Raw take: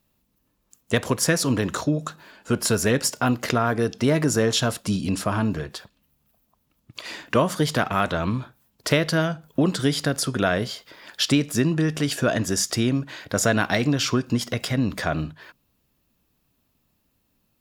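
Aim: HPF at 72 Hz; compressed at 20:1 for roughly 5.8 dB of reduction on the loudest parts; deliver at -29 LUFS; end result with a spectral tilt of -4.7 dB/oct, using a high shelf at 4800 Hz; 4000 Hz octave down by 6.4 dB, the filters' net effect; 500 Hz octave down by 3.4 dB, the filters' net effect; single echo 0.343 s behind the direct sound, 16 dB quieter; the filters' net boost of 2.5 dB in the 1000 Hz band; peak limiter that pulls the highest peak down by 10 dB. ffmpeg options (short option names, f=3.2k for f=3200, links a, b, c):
-af "highpass=72,equalizer=f=500:t=o:g=-6,equalizer=f=1k:t=o:g=6,equalizer=f=4k:t=o:g=-6.5,highshelf=f=4.8k:g=-4.5,acompressor=threshold=-21dB:ratio=20,alimiter=limit=-17dB:level=0:latency=1,aecho=1:1:343:0.158,volume=1dB"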